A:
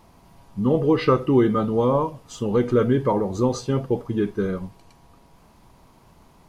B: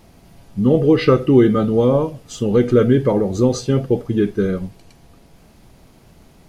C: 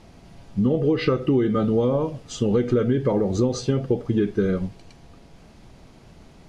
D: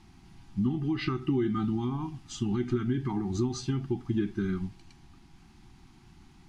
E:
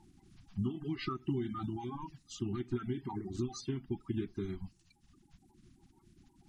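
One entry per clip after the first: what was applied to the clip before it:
parametric band 1,000 Hz −12 dB 0.53 octaves; level +6 dB
low-pass filter 7,100 Hz 12 dB per octave; downward compressor 6 to 1, threshold −17 dBFS, peak gain reduction 10 dB
elliptic band-stop filter 370–760 Hz, stop band 40 dB; level −6 dB
spectral magnitudes quantised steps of 30 dB; reverb reduction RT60 1.1 s; level −5.5 dB

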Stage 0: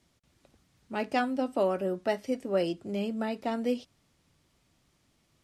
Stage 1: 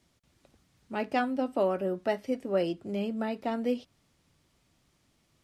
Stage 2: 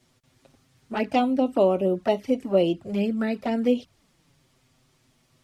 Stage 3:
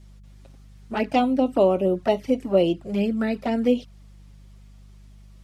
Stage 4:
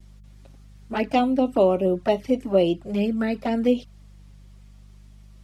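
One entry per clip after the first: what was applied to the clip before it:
dynamic equaliser 7,400 Hz, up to −6 dB, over −58 dBFS, Q 0.73
flanger swept by the level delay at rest 8.1 ms, full sweep at −26 dBFS; level +8.5 dB
hum with harmonics 50 Hz, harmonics 4, −49 dBFS −7 dB per octave; level +1.5 dB
pitch vibrato 0.4 Hz 16 cents

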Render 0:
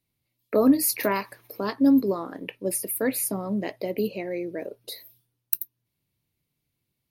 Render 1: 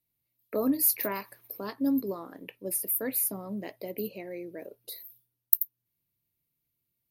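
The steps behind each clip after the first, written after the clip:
parametric band 14,000 Hz +14 dB 0.59 octaves
level −8.5 dB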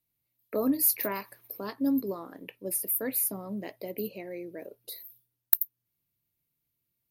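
hard clipping −4.5 dBFS, distortion −25 dB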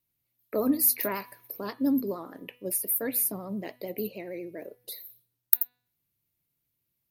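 pitch vibrato 13 Hz 63 cents
hum removal 246.2 Hz, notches 19
level +1.5 dB

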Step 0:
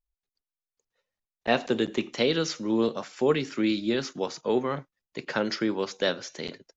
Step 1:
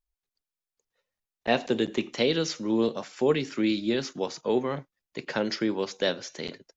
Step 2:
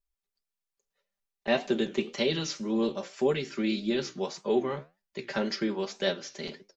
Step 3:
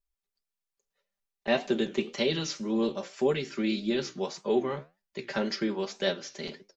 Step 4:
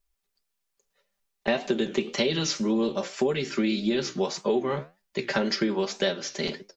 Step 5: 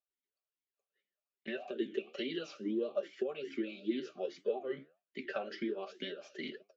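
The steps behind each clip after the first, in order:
dynamic equaliser 1,300 Hz, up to −5 dB, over −44 dBFS, Q 2.7
comb filter 5.1 ms, depth 84%; flanger 1.8 Hz, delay 9.5 ms, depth 7.8 ms, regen +73%
no processing that can be heard
downward compressor 6 to 1, threshold −30 dBFS, peak gain reduction 10 dB; level +8.5 dB
pitch vibrato 1.8 Hz 41 cents; formant filter swept between two vowels a-i 2.4 Hz; level −1 dB

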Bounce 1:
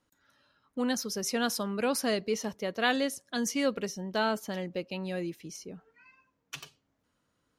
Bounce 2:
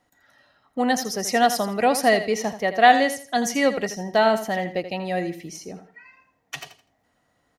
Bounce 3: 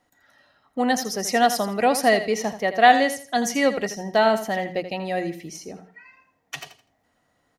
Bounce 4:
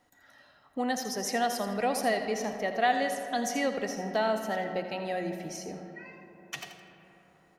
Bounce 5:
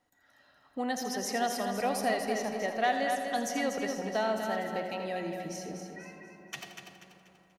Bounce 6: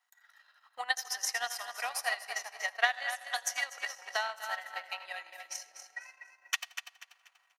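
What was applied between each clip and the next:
hollow resonant body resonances 730/1,900 Hz, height 14 dB, ringing for 25 ms; on a send: repeating echo 82 ms, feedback 26%, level −11.5 dB; on the sum: level +5.5 dB
mains-hum notches 60/120/180 Hz
downward compressor 1.5 to 1, threshold −43 dBFS, peak gain reduction 12 dB; on a send at −8 dB: convolution reverb RT60 3.9 s, pre-delay 20 ms
automatic gain control gain up to 5 dB; on a send: repeating echo 242 ms, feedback 38%, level −7 dB; on the sum: level −7.5 dB
high-pass filter 980 Hz 24 dB per octave; transient designer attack +10 dB, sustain −12 dB

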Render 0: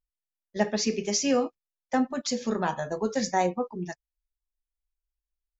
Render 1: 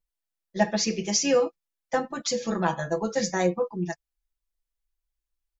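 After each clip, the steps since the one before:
comb filter 6 ms, depth 85%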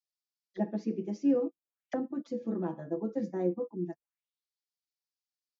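envelope filter 290–4,900 Hz, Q 3.2, down, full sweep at −29 dBFS
level +2.5 dB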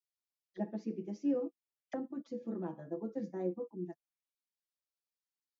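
tape wow and flutter 27 cents
level −6 dB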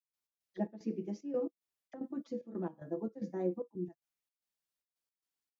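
gate pattern ".x.xx.xxx" 112 BPM −12 dB
level +2 dB

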